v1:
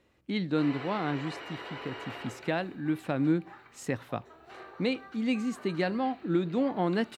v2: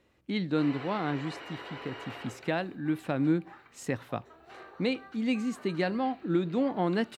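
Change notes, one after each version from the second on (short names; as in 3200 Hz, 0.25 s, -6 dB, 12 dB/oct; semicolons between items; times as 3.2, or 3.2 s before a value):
background: send -9.0 dB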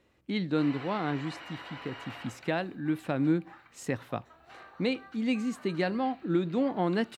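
background: add bell 400 Hz -12 dB 0.69 oct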